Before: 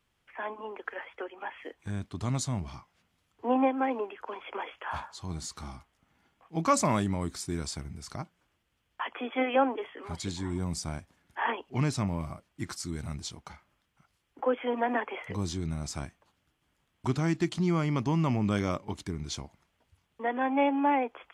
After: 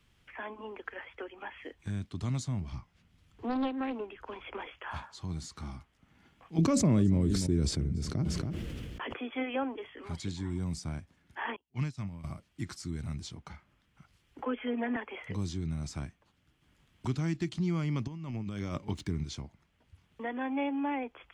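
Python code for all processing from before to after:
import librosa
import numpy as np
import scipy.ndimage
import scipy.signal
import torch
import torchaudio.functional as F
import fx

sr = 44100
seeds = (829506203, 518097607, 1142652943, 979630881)

y = fx.chain(x, sr, fx.low_shelf(hz=120.0, db=11.5),
    fx.doppler_dist(depth_ms=0.39), at=(2.72, 4.67))
y = fx.chain(y, sr, fx.low_shelf_res(hz=630.0, db=9.5, q=1.5),
    fx.echo_single(ms=280, db=-19.5),
    fx.sustainer(db_per_s=25.0), at=(6.58, 9.16))
y = fx.chain(y, sr, fx.peak_eq(hz=400.0, db=-6.0, octaves=1.5),
    fx.upward_expand(threshold_db=-43.0, expansion=2.5), at=(11.56, 12.24))
y = fx.chain(y, sr, fx.lowpass(hz=3300.0, slope=24),
    fx.comb(ms=4.7, depth=0.98), at=(14.45, 14.96))
y = fx.chain(y, sr, fx.median_filter(points=3),
    fx.over_compress(threshold_db=-32.0, ratio=-0.5), at=(18.07, 19.24))
y = fx.lowpass(y, sr, hz=3700.0, slope=6)
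y = fx.peak_eq(y, sr, hz=780.0, db=-9.5, octaves=2.7)
y = fx.band_squash(y, sr, depth_pct=40)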